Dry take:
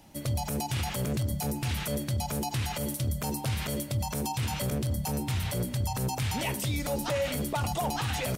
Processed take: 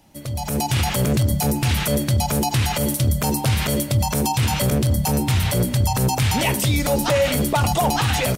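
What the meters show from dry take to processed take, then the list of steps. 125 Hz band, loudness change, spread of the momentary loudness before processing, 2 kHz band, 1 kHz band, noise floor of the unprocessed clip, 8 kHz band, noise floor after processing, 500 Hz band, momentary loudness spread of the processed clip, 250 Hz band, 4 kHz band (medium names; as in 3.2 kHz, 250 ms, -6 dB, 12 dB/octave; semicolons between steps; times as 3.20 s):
+10.5 dB, +11.0 dB, 2 LU, +11.0 dB, +11.0 dB, -38 dBFS, +11.0 dB, -28 dBFS, +11.0 dB, 2 LU, +11.0 dB, +11.0 dB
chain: level rider gain up to 11 dB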